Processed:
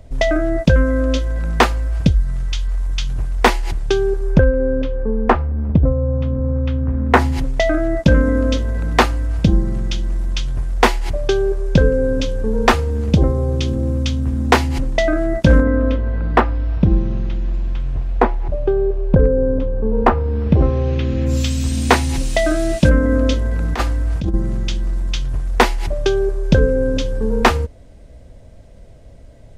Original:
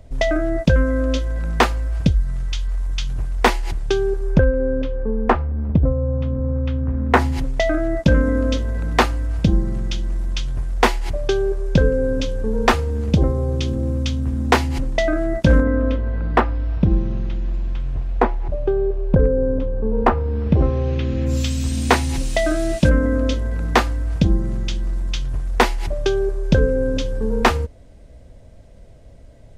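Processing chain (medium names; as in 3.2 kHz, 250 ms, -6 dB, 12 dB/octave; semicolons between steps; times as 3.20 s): 23.09–24.34 s: compressor with a negative ratio -17 dBFS, ratio -0.5; trim +2.5 dB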